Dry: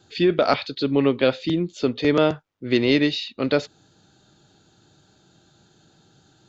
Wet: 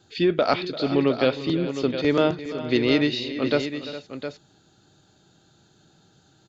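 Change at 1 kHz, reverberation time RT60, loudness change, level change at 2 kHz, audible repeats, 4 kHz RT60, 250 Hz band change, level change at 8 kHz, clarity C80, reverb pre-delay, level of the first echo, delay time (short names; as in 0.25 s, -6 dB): -1.5 dB, none, -2.0 dB, -1.5 dB, 3, none, -1.5 dB, n/a, none, none, -15.5 dB, 0.343 s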